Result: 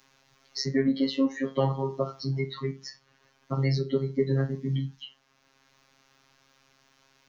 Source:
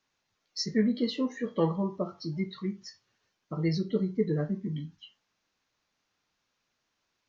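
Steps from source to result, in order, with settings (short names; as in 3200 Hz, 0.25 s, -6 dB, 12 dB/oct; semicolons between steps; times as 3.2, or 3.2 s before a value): robotiser 135 Hz; three-band squash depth 40%; gain +6.5 dB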